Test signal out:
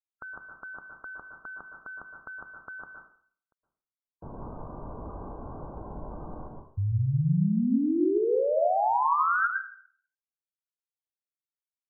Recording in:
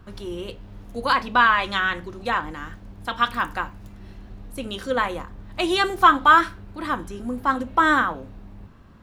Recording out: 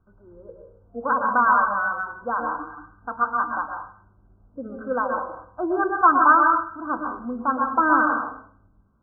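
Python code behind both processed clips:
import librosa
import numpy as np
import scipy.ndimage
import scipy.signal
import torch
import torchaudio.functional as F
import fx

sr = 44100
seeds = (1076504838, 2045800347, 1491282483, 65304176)

y = fx.noise_reduce_blind(x, sr, reduce_db=16)
y = fx.brickwall_lowpass(y, sr, high_hz=1600.0)
y = fx.rev_plate(y, sr, seeds[0], rt60_s=0.55, hf_ratio=0.75, predelay_ms=105, drr_db=2.5)
y = y * 10.0 ** (-1.5 / 20.0)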